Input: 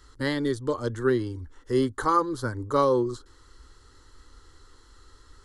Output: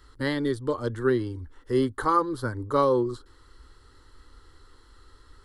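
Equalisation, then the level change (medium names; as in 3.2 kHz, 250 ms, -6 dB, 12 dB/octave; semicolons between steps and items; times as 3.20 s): peaking EQ 6.5 kHz -9.5 dB 0.54 oct; 0.0 dB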